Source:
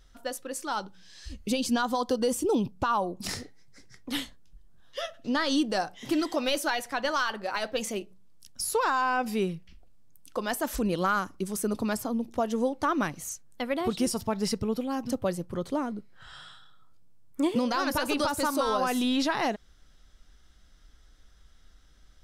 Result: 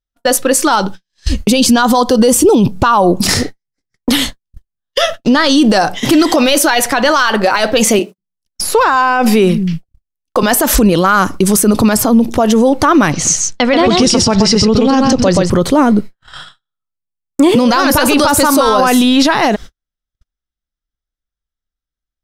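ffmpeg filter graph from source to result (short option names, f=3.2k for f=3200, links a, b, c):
-filter_complex "[0:a]asettb=1/sr,asplit=3[a][b][c];[a]atrim=end=4.094[d];[b]atrim=start=4.09:end=5.23,asetpts=PTS-STARTPTS,afade=t=in:d=0.004:c=qsin,afade=t=out:st=1.136:d=0.004:c=qsin,highshelf=f=4.7k:g=3,acompressor=threshold=-34dB:ratio=3:attack=3.2:release=140:knee=1:detection=peak[e];[c]atrim=start=5.226[f];[d][e]acrossfade=d=0.004:c1=hsin:c2=qsin[g];[g][f]acrossfade=d=0.004:c1=qsin:c2=hsin,asettb=1/sr,asplit=3[h][i][j];[h]atrim=end=7.994[k];[i]atrim=start=7.99:end=10.43,asetpts=PTS-STARTPTS,afade=t=in:d=0.004:c=qsin,afade=t=out:st=2.436:d=0.004:c=qsin,acrossover=split=3300[l][m];[m]acompressor=threshold=-44dB:ratio=4:attack=1:release=60[n];[l][n]amix=inputs=2:normalize=0,acrossover=split=160[o][p];[o]adelay=190[q];[q][p]amix=inputs=2:normalize=0,atrim=end_sample=107604[r];[j]atrim=start=10.426[s];[k][r]acrossfade=d=0.004:c1=hsin:c2=qsin[t];[t][s]acrossfade=d=0.004:c1=qsin:c2=hsin,asettb=1/sr,asplit=3[u][v][w];[u]atrim=end=13.124[x];[v]atrim=start=13.12:end=15.5,asetpts=PTS-STARTPTS,afade=t=in:d=0.004:c=qsin,afade=t=out:st=2.376:d=0.004:c=qsin,lowpass=f=6k:w=0.5412,lowpass=f=6k:w=1.3066,aemphasis=mode=production:type=cd,aecho=1:1:128:0.562,atrim=end_sample=104958[y];[w]atrim=start=15.496[z];[x][y]acrossfade=d=0.004:c1=hsin:c2=qsin[aa];[aa][z]acrossfade=d=0.004:c1=qsin:c2=hsin,agate=range=-55dB:threshold=-44dB:ratio=16:detection=peak,alimiter=level_in=27.5dB:limit=-1dB:release=50:level=0:latency=1,volume=-1dB"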